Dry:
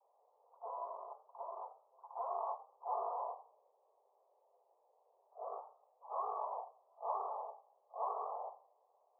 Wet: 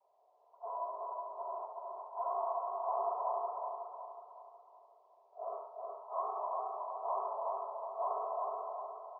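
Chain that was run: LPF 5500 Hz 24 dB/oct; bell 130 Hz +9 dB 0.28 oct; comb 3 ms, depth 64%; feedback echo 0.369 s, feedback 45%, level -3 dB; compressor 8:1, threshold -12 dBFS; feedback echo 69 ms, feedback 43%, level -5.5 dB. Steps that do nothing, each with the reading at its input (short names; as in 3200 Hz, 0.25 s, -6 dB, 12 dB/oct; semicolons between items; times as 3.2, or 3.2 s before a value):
LPF 5500 Hz: input band ends at 1400 Hz; bell 130 Hz: input band starts at 360 Hz; compressor, threshold -12 dBFS: input peak -24.0 dBFS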